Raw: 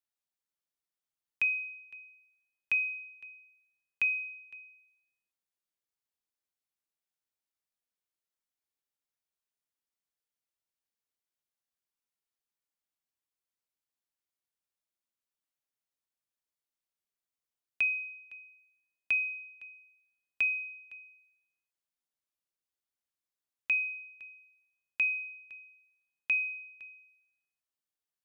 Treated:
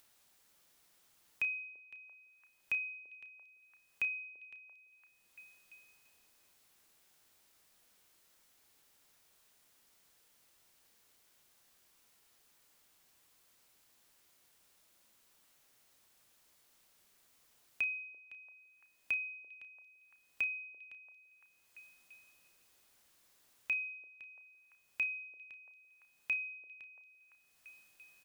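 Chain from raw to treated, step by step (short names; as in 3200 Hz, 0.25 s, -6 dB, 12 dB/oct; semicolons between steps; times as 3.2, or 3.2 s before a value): upward compressor, threshold -41 dBFS; doubler 32 ms -12.5 dB; on a send: delay with a stepping band-pass 0.34 s, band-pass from 450 Hz, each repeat 0.7 oct, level -11 dB; on the sum: gain -5.5 dB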